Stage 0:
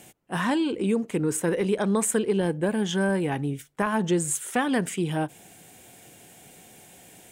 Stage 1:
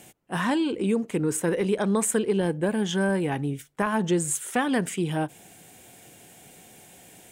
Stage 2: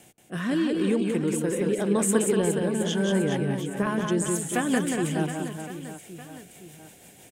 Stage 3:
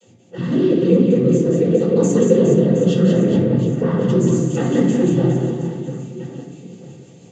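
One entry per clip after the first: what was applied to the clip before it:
no processing that can be heard
rotating-speaker cabinet horn 0.8 Hz, later 6 Hz, at 0:02.50; reverse bouncing-ball delay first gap 180 ms, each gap 1.3×, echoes 5
cochlear-implant simulation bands 16; convolution reverb RT60 1.2 s, pre-delay 3 ms, DRR −13 dB; level −10.5 dB

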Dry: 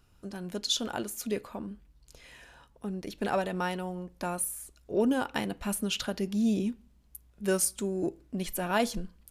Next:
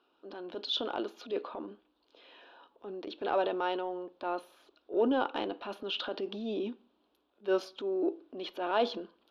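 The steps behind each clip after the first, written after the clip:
elliptic band-pass filter 310–3,600 Hz, stop band 40 dB
parametric band 2,000 Hz −14 dB 0.54 octaves
transient designer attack −6 dB, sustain +4 dB
level +3 dB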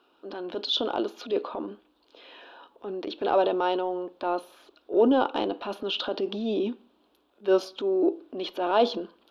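dynamic equaliser 1,900 Hz, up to −7 dB, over −51 dBFS, Q 1.4
level +7.5 dB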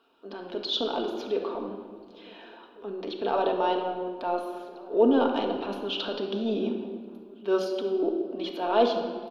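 slap from a distant wall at 250 metres, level −22 dB
rectangular room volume 2,400 cubic metres, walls mixed, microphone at 1.6 metres
level −3 dB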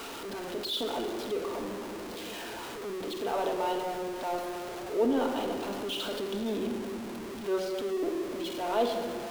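converter with a step at zero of −28 dBFS
level −7 dB

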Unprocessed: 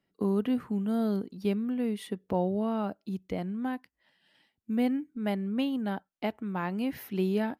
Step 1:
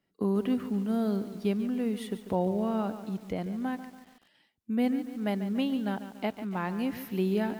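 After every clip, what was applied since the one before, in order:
feedback echo at a low word length 143 ms, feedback 55%, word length 8 bits, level −11.5 dB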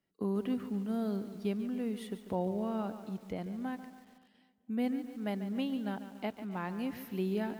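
feedback echo with a low-pass in the loop 256 ms, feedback 49%, low-pass 3,300 Hz, level −21 dB
level −5.5 dB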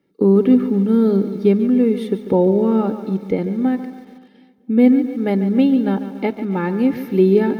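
convolution reverb RT60 0.50 s, pre-delay 3 ms, DRR 18.5 dB
level +6.5 dB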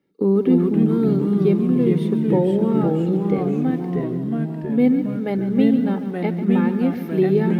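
delay with pitch and tempo change per echo 230 ms, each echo −2 semitones, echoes 3
level −4.5 dB

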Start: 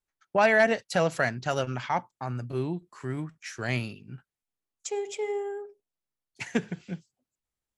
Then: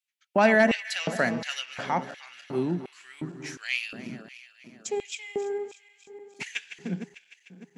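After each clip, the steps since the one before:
feedback delay that plays each chunk backwards 151 ms, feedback 77%, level −13.5 dB
auto-filter high-pass square 1.4 Hz 210–2,600 Hz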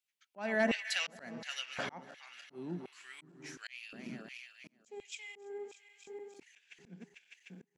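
parametric band 110 Hz −8.5 dB 0.43 octaves
volume swells 689 ms
level −1.5 dB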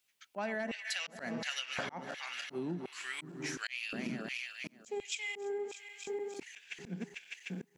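downward compressor 10 to 1, threshold −46 dBFS, peak gain reduction 21 dB
level +11.5 dB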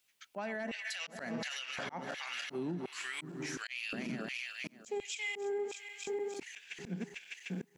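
brickwall limiter −32.5 dBFS, peak gain reduction 11 dB
level +2.5 dB

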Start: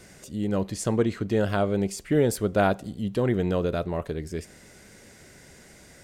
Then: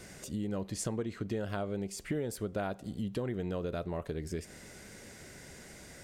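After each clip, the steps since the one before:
downward compressor 5 to 1, threshold −33 dBFS, peak gain reduction 15 dB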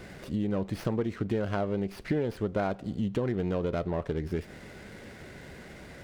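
high-frequency loss of the air 100 metres
windowed peak hold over 5 samples
level +6 dB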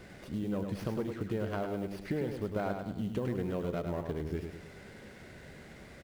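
floating-point word with a short mantissa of 4 bits
on a send: repeating echo 103 ms, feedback 45%, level −6 dB
on the sum: level −5.5 dB

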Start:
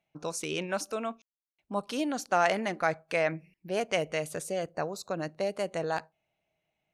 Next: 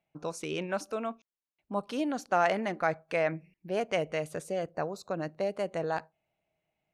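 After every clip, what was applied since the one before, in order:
high-shelf EQ 3,300 Hz −9 dB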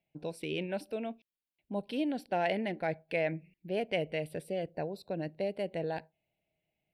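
phaser with its sweep stopped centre 2,900 Hz, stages 4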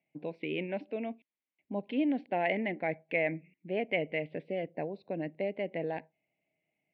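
loudspeaker in its box 150–2,900 Hz, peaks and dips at 270 Hz +6 dB, 1,400 Hz −9 dB, 2,100 Hz +8 dB

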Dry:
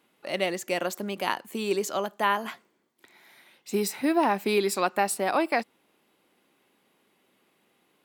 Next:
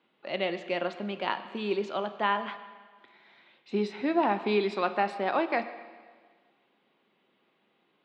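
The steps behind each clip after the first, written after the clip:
Chebyshev band-pass filter 130–3,700 Hz, order 3
on a send at −9 dB: convolution reverb RT60 1.6 s, pre-delay 7 ms
on the sum: level −2.5 dB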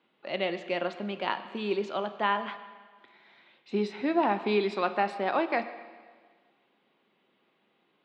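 no processing that can be heard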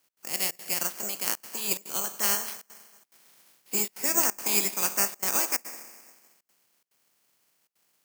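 ceiling on every frequency bin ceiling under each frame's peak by 18 dB
gate pattern "x.xxxx.xxxxxxxx" 178 BPM −24 dB
bad sample-rate conversion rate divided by 6×, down filtered, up zero stuff
level −6 dB

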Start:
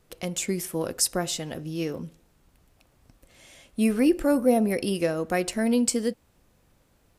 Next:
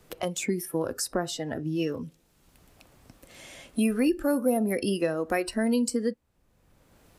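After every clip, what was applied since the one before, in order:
noise reduction from a noise print of the clip's start 13 dB
multiband upward and downward compressor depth 70%
level −1.5 dB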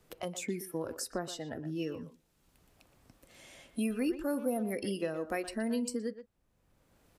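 far-end echo of a speakerphone 120 ms, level −11 dB
level −8 dB

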